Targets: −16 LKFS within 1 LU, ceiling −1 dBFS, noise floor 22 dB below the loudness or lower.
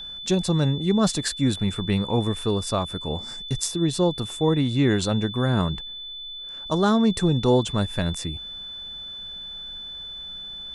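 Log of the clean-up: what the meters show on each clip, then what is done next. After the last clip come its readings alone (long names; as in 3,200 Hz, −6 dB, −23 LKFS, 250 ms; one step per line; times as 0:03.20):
interfering tone 3,500 Hz; level of the tone −34 dBFS; integrated loudness −24.5 LKFS; sample peak −5.5 dBFS; target loudness −16.0 LKFS
→ notch filter 3,500 Hz, Q 30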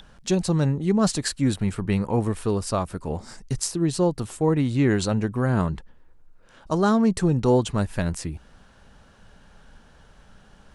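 interfering tone none found; integrated loudness −24.0 LKFS; sample peak −5.5 dBFS; target loudness −16.0 LKFS
→ level +8 dB
brickwall limiter −1 dBFS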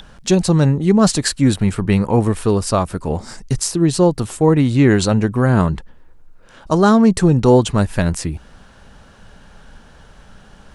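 integrated loudness −16.0 LKFS; sample peak −1.0 dBFS; background noise floor −45 dBFS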